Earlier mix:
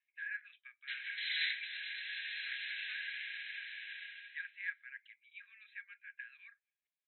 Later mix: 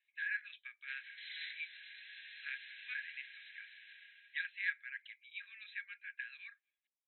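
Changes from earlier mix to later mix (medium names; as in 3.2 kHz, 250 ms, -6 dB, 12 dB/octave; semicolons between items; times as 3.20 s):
speech: remove distance through air 440 m; background -10.5 dB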